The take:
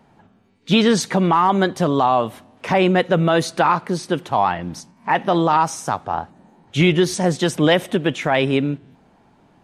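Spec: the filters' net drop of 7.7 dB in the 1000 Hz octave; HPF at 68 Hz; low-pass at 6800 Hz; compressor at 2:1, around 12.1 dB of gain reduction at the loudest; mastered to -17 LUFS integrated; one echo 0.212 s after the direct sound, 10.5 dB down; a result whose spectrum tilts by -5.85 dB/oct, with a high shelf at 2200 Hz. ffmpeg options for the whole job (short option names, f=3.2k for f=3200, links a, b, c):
-af "highpass=68,lowpass=6.8k,equalizer=f=1k:t=o:g=-8.5,highshelf=f=2.2k:g=-8.5,acompressor=threshold=-35dB:ratio=2,aecho=1:1:212:0.299,volume=15dB"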